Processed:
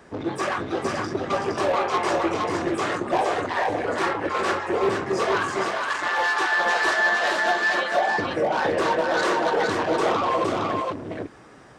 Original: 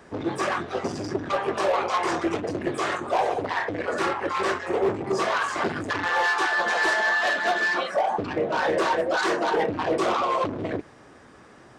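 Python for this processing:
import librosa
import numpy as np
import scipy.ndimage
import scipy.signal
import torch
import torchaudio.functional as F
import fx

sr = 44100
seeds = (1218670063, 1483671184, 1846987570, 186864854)

y = fx.highpass(x, sr, hz=720.0, slope=12, at=(5.62, 6.18))
y = y + 10.0 ** (-3.0 / 20.0) * np.pad(y, (int(464 * sr / 1000.0), 0))[:len(y)]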